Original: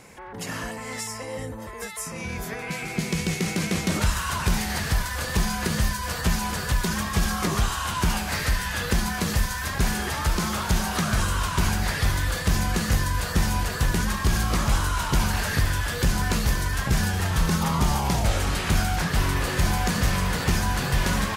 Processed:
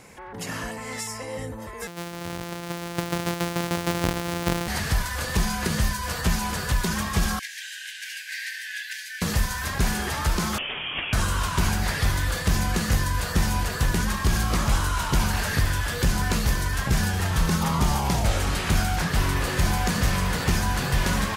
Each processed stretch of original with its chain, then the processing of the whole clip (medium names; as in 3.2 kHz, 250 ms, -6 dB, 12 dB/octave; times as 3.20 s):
1.87–4.68 s: sorted samples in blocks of 256 samples + high-pass 130 Hz 6 dB/octave
7.39–9.22 s: brick-wall FIR high-pass 1.5 kHz + treble shelf 4 kHz -10 dB
10.58–11.13 s: high-pass 680 Hz 24 dB/octave + frequency inversion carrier 4 kHz
whole clip: none